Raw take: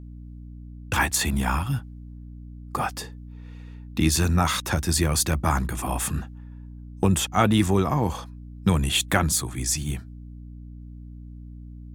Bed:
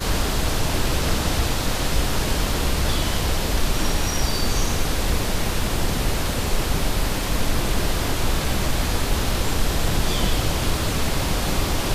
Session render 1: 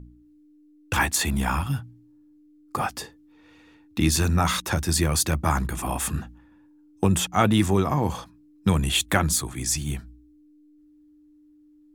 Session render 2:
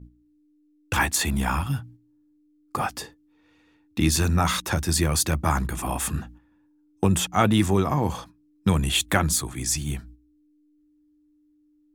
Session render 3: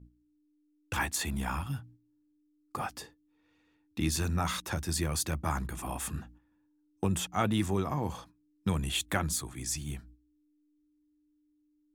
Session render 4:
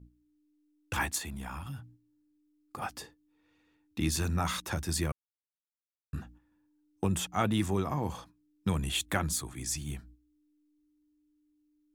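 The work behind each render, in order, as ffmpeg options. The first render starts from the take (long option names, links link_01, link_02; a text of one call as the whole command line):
ffmpeg -i in.wav -af "bandreject=frequency=60:width_type=h:width=4,bandreject=frequency=120:width_type=h:width=4,bandreject=frequency=180:width_type=h:width=4,bandreject=frequency=240:width_type=h:width=4" out.wav
ffmpeg -i in.wav -af "agate=range=-7dB:threshold=-45dB:ratio=16:detection=peak" out.wav
ffmpeg -i in.wav -af "volume=-9dB" out.wav
ffmpeg -i in.wav -filter_complex "[0:a]asettb=1/sr,asplit=3[link_01][link_02][link_03];[link_01]atrim=end=1.184[link_04];[link_02]atrim=start=1.18:end=2.82,asetpts=PTS-STARTPTS,afade=type=in:duration=0.004:curve=qsin,afade=type=out:start_time=1.636:duration=0.004:curve=qsin,acompressor=threshold=-37dB:ratio=4:attack=3.2:release=140:knee=1:detection=peak[link_05];[link_03]atrim=start=2.816[link_06];[link_04][link_05]acrossfade=duration=0.004:curve1=hsin:curve2=qsin[link_07];[link_07][link_06]acrossfade=duration=0.004:curve1=qsin:curve2=hsin,asplit=3[link_08][link_09][link_10];[link_08]atrim=end=5.12,asetpts=PTS-STARTPTS,afade=type=out:start_time=5.116:duration=0.004:curve=hsin[link_11];[link_09]atrim=start=5.12:end=6.13,asetpts=PTS-STARTPTS,volume=0[link_12];[link_10]atrim=start=6.13,asetpts=PTS-STARTPTS,afade=type=in:duration=0.004:curve=hsin[link_13];[link_11][link_12][link_13]concat=n=3:v=0:a=1" out.wav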